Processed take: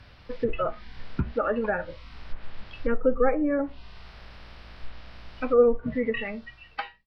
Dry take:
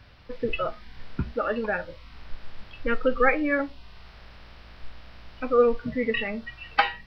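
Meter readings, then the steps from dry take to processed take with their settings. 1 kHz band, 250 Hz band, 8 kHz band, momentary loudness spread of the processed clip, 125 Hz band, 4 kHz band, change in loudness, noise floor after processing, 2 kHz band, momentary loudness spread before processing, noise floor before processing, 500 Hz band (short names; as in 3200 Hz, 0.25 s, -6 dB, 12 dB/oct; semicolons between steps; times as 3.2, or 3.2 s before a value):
-4.5 dB, +1.0 dB, n/a, 23 LU, +1.5 dB, -8.0 dB, -0.5 dB, -52 dBFS, -7.0 dB, 14 LU, -50 dBFS, +1.0 dB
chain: ending faded out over 1.25 s; treble ducked by the level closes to 810 Hz, closed at -20.5 dBFS; gain +1.5 dB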